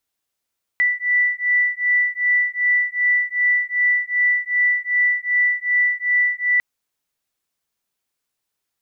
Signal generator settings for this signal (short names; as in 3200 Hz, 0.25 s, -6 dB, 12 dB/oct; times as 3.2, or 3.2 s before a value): beating tones 1970 Hz, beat 2.6 Hz, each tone -19 dBFS 5.80 s